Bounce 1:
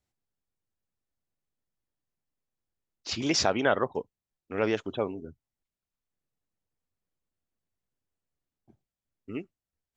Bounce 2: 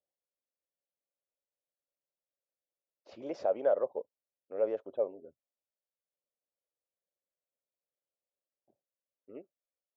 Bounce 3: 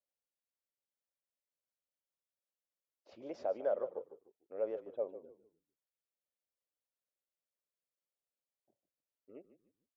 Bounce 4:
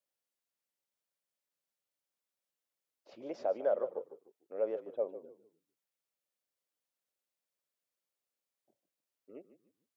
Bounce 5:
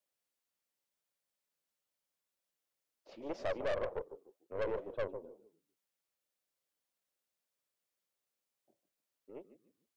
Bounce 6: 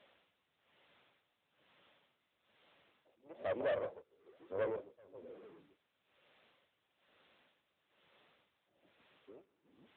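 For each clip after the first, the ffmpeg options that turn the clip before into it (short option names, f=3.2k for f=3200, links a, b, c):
-filter_complex "[0:a]asplit=2[a][b];[b]volume=21dB,asoftclip=hard,volume=-21dB,volume=-6dB[c];[a][c]amix=inputs=2:normalize=0,bandpass=f=560:t=q:w=5.7:csg=0"
-filter_complex "[0:a]asplit=4[a][b][c][d];[b]adelay=149,afreqshift=-39,volume=-14dB[e];[c]adelay=298,afreqshift=-78,volume=-24.5dB[f];[d]adelay=447,afreqshift=-117,volume=-34.9dB[g];[a][e][f][g]amix=inputs=4:normalize=0,volume=-6dB"
-af "highpass=130,volume=3dB"
-af "flanger=delay=4.6:depth=9.1:regen=-66:speed=2:shape=sinusoidal,aeval=exprs='(tanh(100*val(0)+0.6)-tanh(0.6))/100':c=same,volume=8.5dB"
-af "aeval=exprs='val(0)+0.5*0.00224*sgn(val(0))':c=same,tremolo=f=1.1:d=0.96,volume=1dB" -ar 8000 -c:a libopencore_amrnb -b:a 10200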